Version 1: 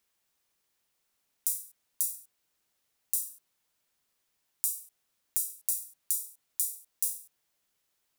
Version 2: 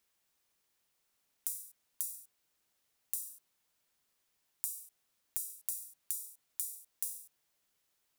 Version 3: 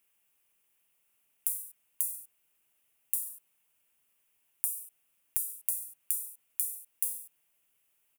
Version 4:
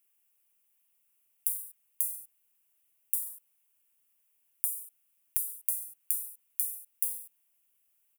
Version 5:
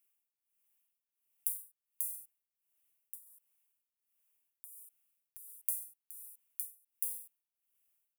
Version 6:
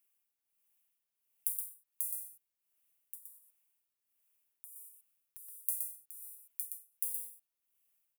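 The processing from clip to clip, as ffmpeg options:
-af "acompressor=threshold=-32dB:ratio=6,volume=-1dB"
-af "firequalizer=gain_entry='entry(1800,0);entry(2700,8);entry(4000,-9);entry(10000,7)':delay=0.05:min_phase=1"
-af "crystalizer=i=1:c=0,volume=-7dB"
-af "tremolo=f=1.4:d=0.89,volume=-4dB"
-af "aecho=1:1:120:0.531"

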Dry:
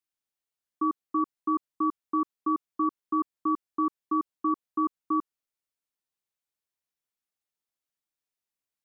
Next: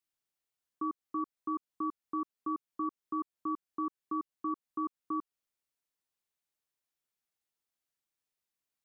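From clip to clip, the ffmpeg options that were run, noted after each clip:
-af "alimiter=level_in=2.5dB:limit=-24dB:level=0:latency=1:release=188,volume=-2.5dB"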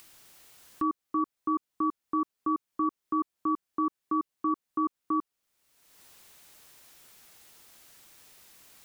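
-af "acompressor=mode=upward:threshold=-40dB:ratio=2.5,volume=6.5dB"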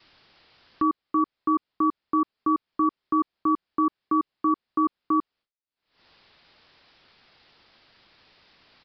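-af "agate=range=-33dB:threshold=-52dB:ratio=3:detection=peak,aresample=11025,aresample=44100,volume=5.5dB"

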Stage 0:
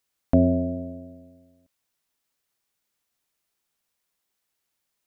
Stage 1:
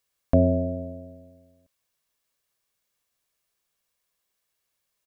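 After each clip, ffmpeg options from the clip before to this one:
-af "aecho=1:1:1.8:0.32"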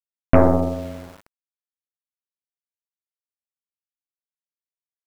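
-af "aeval=exprs='0.562*(cos(1*acos(clip(val(0)/0.562,-1,1)))-cos(1*PI/2))+0.126*(cos(6*acos(clip(val(0)/0.562,-1,1)))-cos(6*PI/2))':c=same,aeval=exprs='val(0)*gte(abs(val(0)),0.00841)':c=same,volume=4dB"

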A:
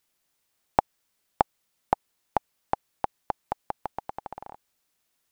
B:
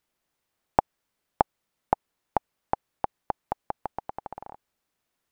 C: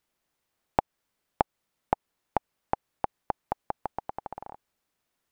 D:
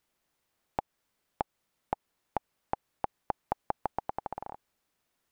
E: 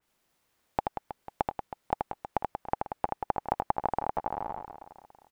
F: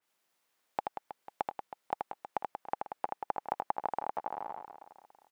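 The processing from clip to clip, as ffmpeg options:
-af "highshelf=f=2.7k:g=-9.5,volume=1dB"
-af "acompressor=threshold=-24dB:ratio=1.5"
-af "alimiter=limit=-14dB:level=0:latency=1:release=29,volume=1dB"
-filter_complex "[0:a]asplit=2[a][b];[b]aecho=0:1:80|184|319.2|495|723.4:0.631|0.398|0.251|0.158|0.1[c];[a][c]amix=inputs=2:normalize=0,adynamicequalizer=threshold=0.002:dfrequency=3000:dqfactor=0.7:tfrequency=3000:tqfactor=0.7:attack=5:release=100:ratio=0.375:range=1.5:mode=cutabove:tftype=highshelf,volume=3dB"
-af "highpass=f=520:p=1,volume=-3dB"

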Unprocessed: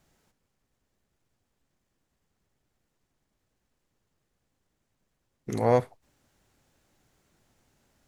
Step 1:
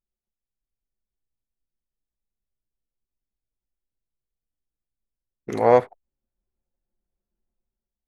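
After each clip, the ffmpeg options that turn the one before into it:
-af "anlmdn=0.001,bass=f=250:g=-12,treble=f=4k:g=-11,dynaudnorm=f=110:g=9:m=9dB"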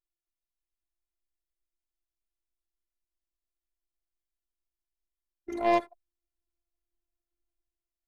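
-af "afftfilt=real='hypot(re,im)*cos(PI*b)':imag='0':win_size=512:overlap=0.75,aeval=exprs='0.422*(cos(1*acos(clip(val(0)/0.422,-1,1)))-cos(1*PI/2))+0.0266*(cos(8*acos(clip(val(0)/0.422,-1,1)))-cos(8*PI/2))':c=same,adynamicequalizer=threshold=0.0141:dfrequency=3000:dqfactor=0.7:tfrequency=3000:tqfactor=0.7:attack=5:release=100:ratio=0.375:range=2:mode=boostabove:tftype=highshelf,volume=-3.5dB"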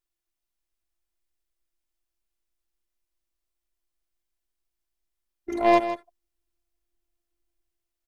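-af "aecho=1:1:160:0.282,volume=5.5dB"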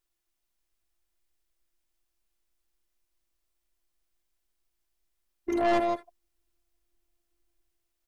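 -af "asoftclip=type=tanh:threshold=-24.5dB,volume=4dB"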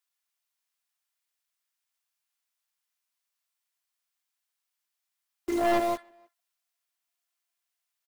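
-filter_complex "[0:a]acrossover=split=720[a][b];[a]acrusher=bits=6:mix=0:aa=0.000001[c];[c][b]amix=inputs=2:normalize=0,asplit=2[d][e];[e]adelay=310,highpass=300,lowpass=3.4k,asoftclip=type=hard:threshold=-25dB,volume=-29dB[f];[d][f]amix=inputs=2:normalize=0"

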